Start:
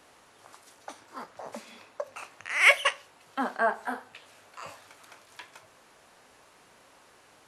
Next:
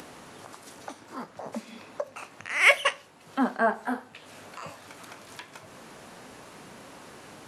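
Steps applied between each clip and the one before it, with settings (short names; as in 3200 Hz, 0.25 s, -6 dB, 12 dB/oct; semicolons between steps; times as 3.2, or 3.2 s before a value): bell 190 Hz +10.5 dB 1.9 oct; upward compressor, threshold -37 dBFS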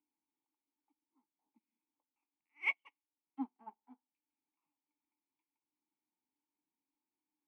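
vowel filter u; upward expander 2.5:1, over -50 dBFS; gain -1.5 dB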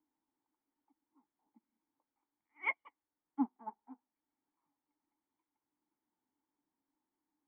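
vibrato 9.5 Hz 66 cents; polynomial smoothing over 41 samples; gain +6.5 dB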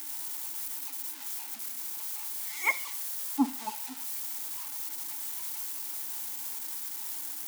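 switching spikes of -34 dBFS; on a send at -16 dB: reverb RT60 0.40 s, pre-delay 44 ms; on the sum: gain +7.5 dB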